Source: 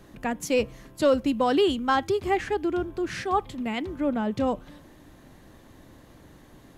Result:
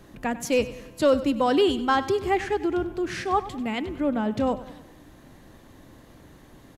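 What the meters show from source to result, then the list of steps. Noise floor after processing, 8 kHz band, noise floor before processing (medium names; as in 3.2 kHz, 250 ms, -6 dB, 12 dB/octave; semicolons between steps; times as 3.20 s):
-51 dBFS, +1.0 dB, -52 dBFS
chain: feedback delay 97 ms, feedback 50%, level -15.5 dB; trim +1 dB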